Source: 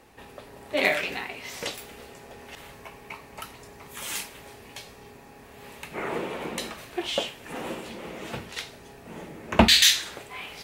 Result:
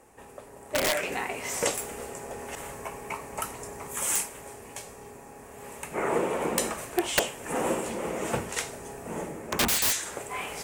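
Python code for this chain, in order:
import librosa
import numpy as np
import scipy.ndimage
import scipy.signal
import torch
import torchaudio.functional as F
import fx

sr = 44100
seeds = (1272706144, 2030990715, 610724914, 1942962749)

y = fx.graphic_eq(x, sr, hz=(500, 1000, 4000, 8000), db=(4, 3, -11, 12))
y = (np.mod(10.0 ** (15.0 / 20.0) * y + 1.0, 2.0) - 1.0) / 10.0 ** (15.0 / 20.0)
y = fx.rider(y, sr, range_db=4, speed_s=0.5)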